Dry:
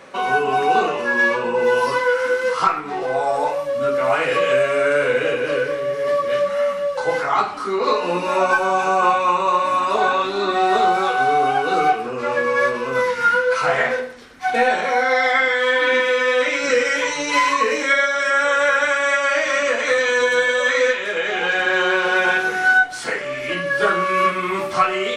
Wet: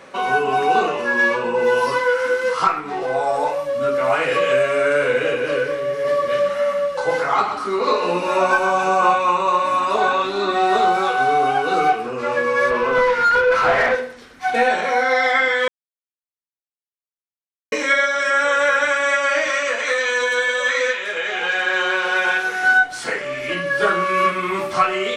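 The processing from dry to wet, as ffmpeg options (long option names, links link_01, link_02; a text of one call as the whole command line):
ffmpeg -i in.wav -filter_complex "[0:a]asettb=1/sr,asplit=3[link_01][link_02][link_03];[link_01]atrim=end=5.924[link_04];[link_02]atrim=start=5.92:end=9.15,asetpts=PTS-STARTPTS,afade=type=in:duration=0.004:curve=qsin,afade=type=out:start_time=3.226:duration=0.004:curve=qsin,aecho=1:1:128:0.376,atrim=end_sample=142443[link_05];[link_03]atrim=start=9.146[link_06];[link_04][link_05]acrossfade=duration=0.004:curve1=hsin:curve2=qsin[link_07];[link_07][link_06]acrossfade=duration=0.004:curve1=qsin:curve2=hsin,asettb=1/sr,asplit=3[link_08][link_09][link_10];[link_08]atrim=end=12.704[link_11];[link_09]atrim=start=12.7:end=13.95,asetpts=PTS-STARTPTS,afade=type=in:duration=0.004:curve=qsin,afade=type=out:start_time=1.246:duration=0.004:curve=qsin,asplit=2[link_12][link_13];[link_13]highpass=frequency=720:poles=1,volume=17dB,asoftclip=type=tanh:threshold=-6.5dB[link_14];[link_12][link_14]amix=inputs=2:normalize=0,lowpass=frequency=1300:poles=1,volume=-6dB[link_15];[link_10]atrim=start=13.946[link_16];[link_11][link_15]acrossfade=duration=0.004:curve1=hsin:curve2=qsin[link_17];[link_17][link_16]acrossfade=duration=0.004:curve1=qsin:curve2=hsin,asettb=1/sr,asplit=3[link_18][link_19][link_20];[link_18]atrim=end=19.504[link_21];[link_19]atrim=start=19.5:end=22.63,asetpts=PTS-STARTPTS,afade=type=in:duration=0.004:curve=qsin,afade=type=out:start_time=3.126:duration=0.004:curve=qsin,lowshelf=frequency=400:gain=-11[link_22];[link_20]atrim=start=22.626[link_23];[link_21][link_22]acrossfade=duration=0.004:curve1=hsin:curve2=qsin[link_24];[link_24][link_23]acrossfade=duration=0.004:curve1=qsin:curve2=hsin,asplit=3[link_25][link_26][link_27];[link_25]atrim=end=15.68,asetpts=PTS-STARTPTS,afade=type=out:start_time=15.676:duration=0.004:curve=hsin[link_28];[link_26]atrim=start=15.68:end=17.72,asetpts=PTS-STARTPTS,volume=0[link_29];[link_27]atrim=start=17.72,asetpts=PTS-STARTPTS,afade=type=in:duration=0.004:curve=hsin[link_30];[link_28][link_29][link_30]concat=n=3:v=0:a=1" out.wav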